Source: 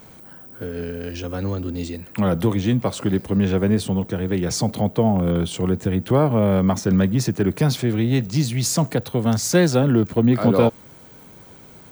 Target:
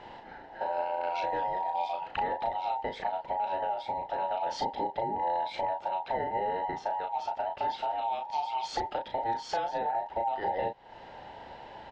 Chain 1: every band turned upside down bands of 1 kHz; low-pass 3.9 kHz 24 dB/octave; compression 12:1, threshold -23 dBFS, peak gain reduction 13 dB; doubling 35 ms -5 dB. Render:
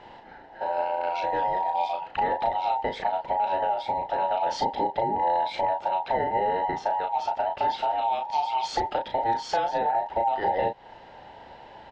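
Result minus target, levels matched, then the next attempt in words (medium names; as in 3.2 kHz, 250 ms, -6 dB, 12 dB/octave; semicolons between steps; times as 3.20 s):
compression: peak gain reduction -6 dB
every band turned upside down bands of 1 kHz; low-pass 3.9 kHz 24 dB/octave; compression 12:1, threshold -29.5 dBFS, peak gain reduction 19 dB; doubling 35 ms -5 dB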